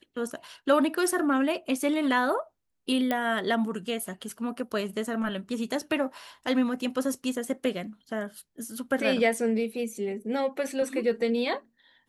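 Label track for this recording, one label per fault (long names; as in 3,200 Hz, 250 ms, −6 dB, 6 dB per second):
3.110000	3.110000	click −14 dBFS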